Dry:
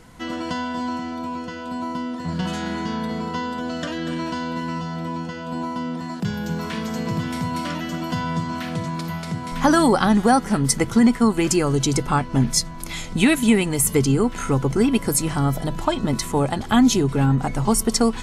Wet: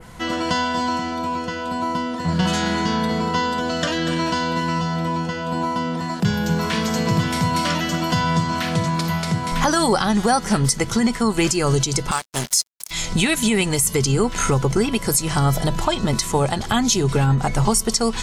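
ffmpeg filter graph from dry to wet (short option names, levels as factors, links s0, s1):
-filter_complex "[0:a]asettb=1/sr,asplit=3[s0][s1][s2];[s0]atrim=end=12.114[s3];[s1]atrim=start=12.11:end=12.91,asetpts=PTS-STARTPTS,afade=t=in:d=0.004:c=qsin,afade=t=out:st=0.796:d=0.004:c=qsin,aemphasis=mode=production:type=riaa,aeval=exprs='sgn(val(0))*max(abs(val(0))-0.0355,0)':c=same[s4];[s2]atrim=start=12.906[s5];[s3][s4]acrossfade=d=0.004:c1=hsin:c2=qsin[s6];[s6][s5]acrossfade=d=0.004:c1=qsin:c2=hsin,adynamicequalizer=threshold=0.01:dfrequency=5700:dqfactor=0.71:tfrequency=5700:tqfactor=0.71:attack=5:release=100:ratio=0.375:range=4:mode=boostabove:tftype=bell,alimiter=limit=0.2:level=0:latency=1:release=267,equalizer=f=270:t=o:w=0.33:g=-9,volume=2.11"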